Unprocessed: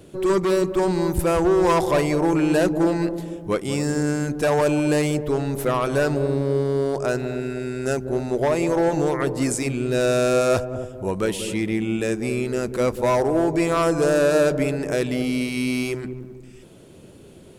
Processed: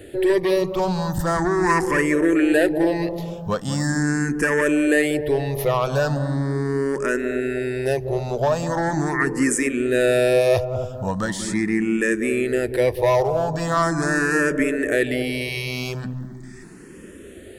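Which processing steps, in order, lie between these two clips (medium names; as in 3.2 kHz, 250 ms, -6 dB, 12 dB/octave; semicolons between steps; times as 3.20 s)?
peaking EQ 1.8 kHz +14 dB 0.21 oct; in parallel at +2 dB: compression, threshold -27 dBFS, peak gain reduction 12.5 dB; on the sum: barber-pole phaser +0.4 Hz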